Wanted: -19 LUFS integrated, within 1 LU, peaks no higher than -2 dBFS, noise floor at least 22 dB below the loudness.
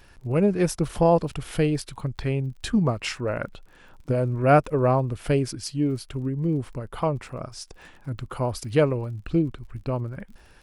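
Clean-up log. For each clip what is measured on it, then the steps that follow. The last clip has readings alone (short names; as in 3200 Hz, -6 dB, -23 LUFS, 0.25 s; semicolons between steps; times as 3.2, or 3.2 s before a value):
ticks 40/s; loudness -25.0 LUFS; peak -6.0 dBFS; loudness target -19.0 LUFS
-> de-click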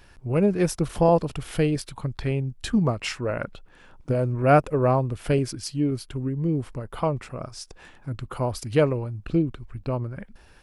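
ticks 0/s; loudness -25.0 LUFS; peak -6.0 dBFS; loudness target -19.0 LUFS
-> gain +6 dB; limiter -2 dBFS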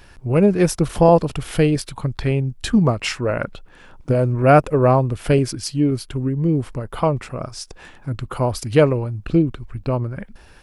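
loudness -19.0 LUFS; peak -2.0 dBFS; noise floor -46 dBFS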